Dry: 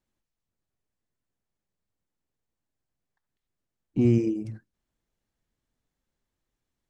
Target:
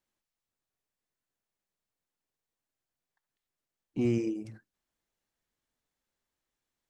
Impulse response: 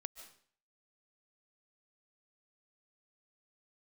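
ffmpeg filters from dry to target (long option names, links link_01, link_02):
-af "lowshelf=frequency=310:gain=-11.5"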